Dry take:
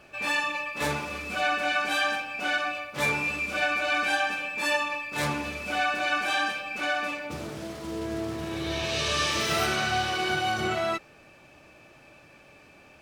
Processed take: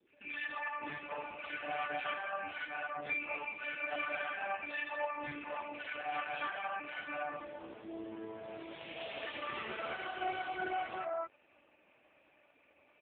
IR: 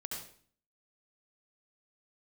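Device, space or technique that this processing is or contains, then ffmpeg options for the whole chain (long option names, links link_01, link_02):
telephone: -filter_complex "[0:a]asplit=3[link_01][link_02][link_03];[link_01]afade=type=out:start_time=4.8:duration=0.02[link_04];[link_02]bandreject=frequency=222.9:width_type=h:width=4,bandreject=frequency=445.8:width_type=h:width=4,bandreject=frequency=668.7:width_type=h:width=4,bandreject=frequency=891.6:width_type=h:width=4,bandreject=frequency=1114.5:width_type=h:width=4,bandreject=frequency=1337.4:width_type=h:width=4,bandreject=frequency=1560.3:width_type=h:width=4,bandreject=frequency=1783.2:width_type=h:width=4,bandreject=frequency=2006.1:width_type=h:width=4,bandreject=frequency=2229:width_type=h:width=4,bandreject=frequency=2451.9:width_type=h:width=4,bandreject=frequency=2674.8:width_type=h:width=4,bandreject=frequency=2897.7:width_type=h:width=4,bandreject=frequency=3120.6:width_type=h:width=4,bandreject=frequency=3343.5:width_type=h:width=4,bandreject=frequency=3566.4:width_type=h:width=4,bandreject=frequency=3789.3:width_type=h:width=4,bandreject=frequency=4012.2:width_type=h:width=4,bandreject=frequency=4235.1:width_type=h:width=4,bandreject=frequency=4458:width_type=h:width=4,bandreject=frequency=4680.9:width_type=h:width=4,bandreject=frequency=4903.8:width_type=h:width=4,bandreject=frequency=5126.7:width_type=h:width=4,bandreject=frequency=5349.6:width_type=h:width=4,bandreject=frequency=5572.5:width_type=h:width=4,bandreject=frequency=5795.4:width_type=h:width=4,afade=type=in:start_time=4.8:duration=0.02,afade=type=out:start_time=5.25:duration=0.02[link_05];[link_03]afade=type=in:start_time=5.25:duration=0.02[link_06];[link_04][link_05][link_06]amix=inputs=3:normalize=0,highpass=270,lowpass=3100,acrossover=split=410|1500[link_07][link_08][link_09];[link_09]adelay=70[link_10];[link_08]adelay=290[link_11];[link_07][link_11][link_10]amix=inputs=3:normalize=0,volume=-6dB" -ar 8000 -c:a libopencore_amrnb -b:a 4750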